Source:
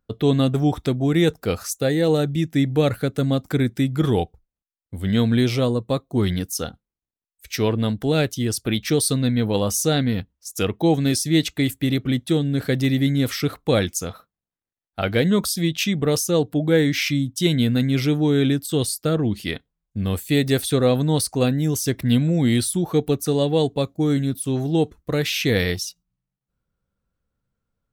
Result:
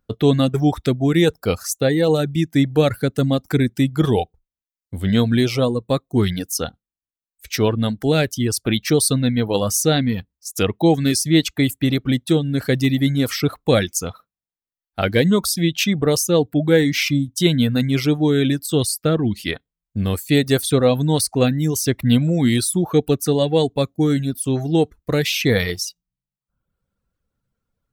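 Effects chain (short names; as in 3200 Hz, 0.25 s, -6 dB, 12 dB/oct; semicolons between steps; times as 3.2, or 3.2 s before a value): reverb removal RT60 0.76 s; gain +3.5 dB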